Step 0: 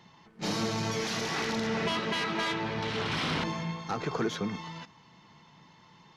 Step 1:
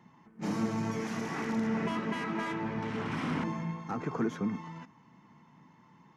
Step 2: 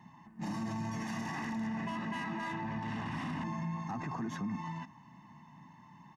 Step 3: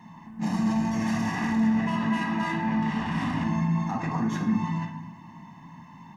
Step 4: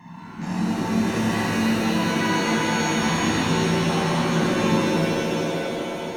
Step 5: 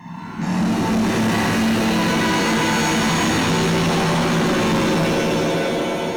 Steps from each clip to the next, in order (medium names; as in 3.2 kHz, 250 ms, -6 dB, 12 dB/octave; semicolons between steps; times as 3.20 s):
graphic EQ 125/250/1000/2000/4000/8000 Hz +4/+12/+5/+4/-11/+3 dB; trim -8.5 dB
comb 1.1 ms, depth 80%; peak limiter -30 dBFS, peak gain reduction 10.5 dB
reverberation RT60 0.90 s, pre-delay 4 ms, DRR 1.5 dB; trim +6.5 dB
peak limiter -24.5 dBFS, peak gain reduction 9 dB; pitch-shifted reverb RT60 3.1 s, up +7 st, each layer -2 dB, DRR -5 dB; trim +2.5 dB
overload inside the chain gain 22.5 dB; trim +7 dB